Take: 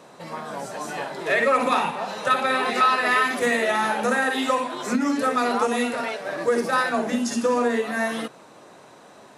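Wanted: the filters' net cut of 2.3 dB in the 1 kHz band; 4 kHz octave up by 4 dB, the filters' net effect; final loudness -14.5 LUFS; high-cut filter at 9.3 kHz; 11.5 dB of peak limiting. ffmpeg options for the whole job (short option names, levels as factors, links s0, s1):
-af "lowpass=9300,equalizer=f=1000:t=o:g=-3.5,equalizer=f=4000:t=o:g=5,volume=5.01,alimiter=limit=0.501:level=0:latency=1"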